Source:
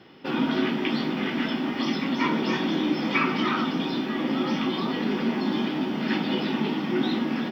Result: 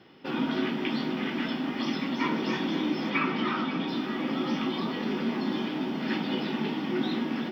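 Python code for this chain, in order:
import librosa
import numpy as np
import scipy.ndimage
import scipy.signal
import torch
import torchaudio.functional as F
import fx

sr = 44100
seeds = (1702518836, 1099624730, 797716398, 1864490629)

y = fx.lowpass(x, sr, hz=4300.0, slope=12, at=(3.1, 3.88))
y = fx.echo_feedback(y, sr, ms=535, feedback_pct=58, wet_db=-13.0)
y = F.gain(torch.from_numpy(y), -4.0).numpy()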